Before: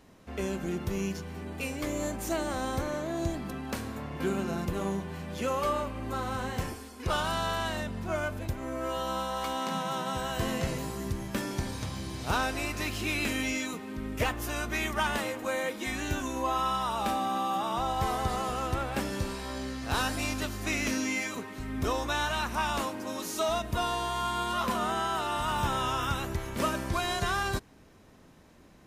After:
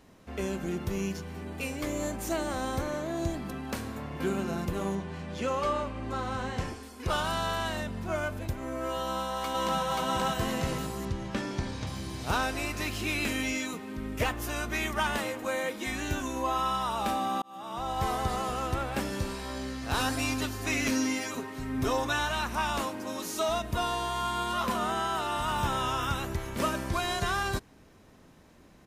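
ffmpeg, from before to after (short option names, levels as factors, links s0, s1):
-filter_complex "[0:a]asettb=1/sr,asplit=3[s0][s1][s2];[s0]atrim=end=4.954[s3];[s1]atrim=start=4.95:end=6.83,asetpts=PTS-STARTPTS,afade=t=in:d=0.004:c=qsin,afade=t=out:st=1.876:d=0.004:c=qsin,lowpass=7300[s4];[s2]atrim=start=6.826[s5];[s3][s4]acrossfade=d=0.004:c1=hsin:c2=qsin[s6];[s6][s5]acrossfade=d=0.004:c1=qsin:c2=hsin,asplit=2[s7][s8];[s8]afade=t=in:st=9.01:d=0.01,afade=t=out:st=9.8:d=0.01,aecho=0:1:530|1060|1590|2120|2650|3180:1|0.4|0.16|0.064|0.0256|0.01024[s9];[s7][s9]amix=inputs=2:normalize=0,asettb=1/sr,asplit=3[s10][s11][s12];[s10]atrim=end=11.054[s13];[s11]atrim=start=11.05:end=11.87,asetpts=PTS-STARTPTS,afade=t=in:d=0.004:c=qsin,afade=t=out:st=0.816:d=0.004:c=qsin,lowpass=5800[s14];[s12]atrim=start=11.866[s15];[s13][s14]acrossfade=d=0.004:c1=hsin:c2=qsin[s16];[s16][s15]acrossfade=d=0.004:c1=qsin:c2=hsin,asettb=1/sr,asplit=3[s17][s18][s19];[s17]atrim=end=19.994[s20];[s18]atrim=start=19.99:end=22.19,asetpts=PTS-STARTPTS,afade=t=in:d=0.004:c=qsin,afade=t=out:st=2.196:d=0.004:c=qsin,aecho=1:1:7.5:0.59,atrim=end_sample=97020[s21];[s19]atrim=start=22.186[s22];[s20][s21]acrossfade=d=0.004:c1=hsin:c2=qsin[s23];[s23][s22]acrossfade=d=0.004:c1=qsin:c2=hsin,asplit=2[s24][s25];[s24]atrim=end=17.42,asetpts=PTS-STARTPTS,afade=t=out:st=17.416:d=0.004:c=hsin[s26];[s25]atrim=start=17.42,asetpts=PTS-STARTPTS,afade=t=in:d=0.63[s27];[s26][s27]concat=n=2:v=0:a=1"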